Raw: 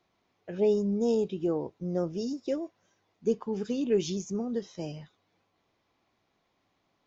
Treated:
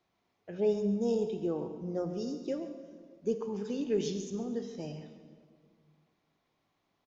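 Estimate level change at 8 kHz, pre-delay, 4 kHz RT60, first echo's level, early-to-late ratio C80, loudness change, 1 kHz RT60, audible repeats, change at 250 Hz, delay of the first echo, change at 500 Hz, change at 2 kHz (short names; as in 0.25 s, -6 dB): n/a, 26 ms, 1.4 s, -14.5 dB, 9.0 dB, -3.5 dB, 1.7 s, 1, -3.5 dB, 0.137 s, -3.5 dB, -4.0 dB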